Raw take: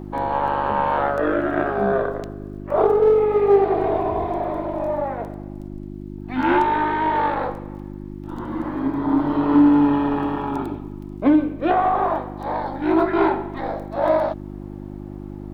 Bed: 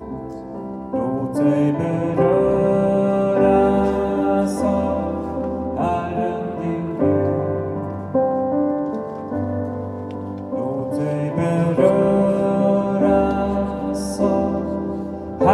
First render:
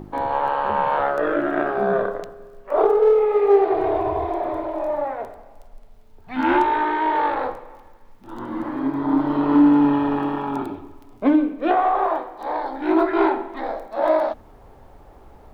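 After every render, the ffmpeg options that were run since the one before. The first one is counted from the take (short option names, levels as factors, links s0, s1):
-af "bandreject=f=50:t=h:w=4,bandreject=f=100:t=h:w=4,bandreject=f=150:t=h:w=4,bandreject=f=200:t=h:w=4,bandreject=f=250:t=h:w=4,bandreject=f=300:t=h:w=4,bandreject=f=350:t=h:w=4"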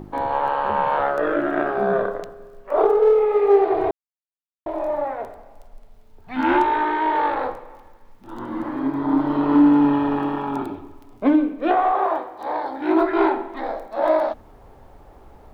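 -filter_complex "[0:a]asettb=1/sr,asplit=3[s0][s1][s2];[s0]atrim=end=11.924[s3];[s1]atrim=start=11.92:end=13,asetpts=PTS-STARTPTS,afade=t=in:d=0.004:c=qsin,afade=t=out:st=1.076:d=0.004:c=qsin,highpass=62[s4];[s2]atrim=start=12.996[s5];[s3][s4]acrossfade=d=0.004:c1=hsin:c2=qsin[s6];[s6][s5]acrossfade=d=0.004:c1=qsin:c2=hsin,asplit=3[s7][s8][s9];[s7]atrim=end=3.91,asetpts=PTS-STARTPTS,afade=t=out:st=3.906:d=0.004:c=hsin[s10];[s8]atrim=start=3.91:end=4.66,asetpts=PTS-STARTPTS,volume=0[s11];[s9]atrim=start=4.66,asetpts=PTS-STARTPTS,afade=t=in:d=0.004:c=hsin[s12];[s10][s11][s12]concat=n=3:v=0:a=1"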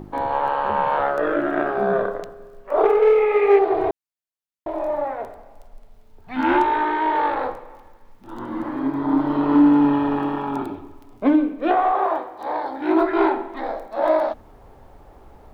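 -filter_complex "[0:a]asettb=1/sr,asplit=3[s0][s1][s2];[s0]atrim=end=2.844[s3];[s1]atrim=start=2.84:end=3.59,asetpts=PTS-STARTPTS,afade=t=in:d=0.004:c=qsin,afade=t=out:st=0.746:d=0.004:c=qsin,equalizer=f=2300:w=1.8:g=14.5[s4];[s2]atrim=start=3.586[s5];[s3][s4]acrossfade=d=0.004:c1=hsin:c2=qsin[s6];[s6][s5]acrossfade=d=0.004:c1=qsin:c2=hsin"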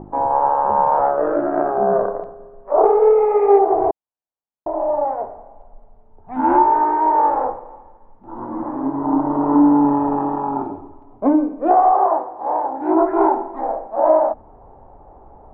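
-af "lowpass=f=860:t=q:w=2.1"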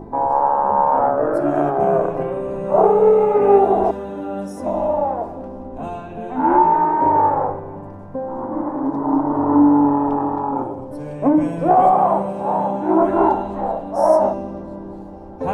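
-filter_complex "[1:a]volume=0.376[s0];[0:a][s0]amix=inputs=2:normalize=0"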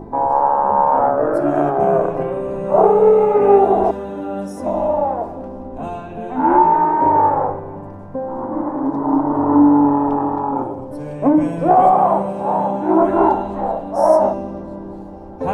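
-af "volume=1.19,alimiter=limit=0.891:level=0:latency=1"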